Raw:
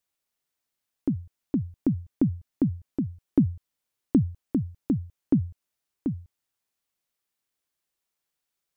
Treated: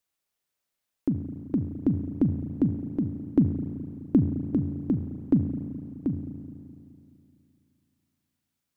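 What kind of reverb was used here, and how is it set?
spring tank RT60 2.7 s, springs 35/42 ms, chirp 20 ms, DRR 6.5 dB

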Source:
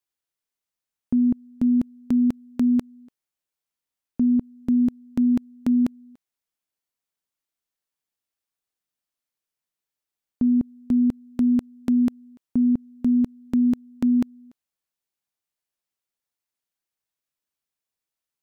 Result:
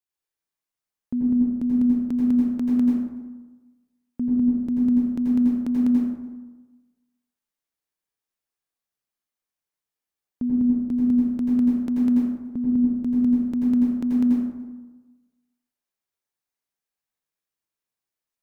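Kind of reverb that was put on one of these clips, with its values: plate-style reverb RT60 1.2 s, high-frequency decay 0.45×, pre-delay 75 ms, DRR -4 dB; gain -5.5 dB

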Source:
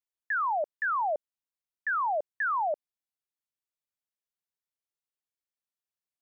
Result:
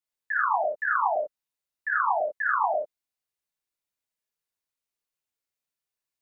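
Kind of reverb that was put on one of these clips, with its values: non-linear reverb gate 0.12 s flat, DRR -5 dB; gain -2 dB

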